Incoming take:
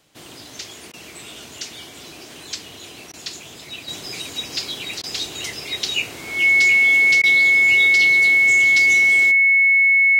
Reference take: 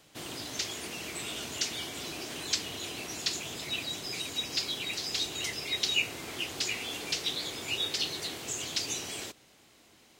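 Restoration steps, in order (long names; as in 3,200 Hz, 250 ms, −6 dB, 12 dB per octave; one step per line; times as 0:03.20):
notch filter 2,200 Hz, Q 30
repair the gap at 0:00.92/0:03.12/0:05.02/0:07.22, 14 ms
level correction −5.5 dB, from 0:03.88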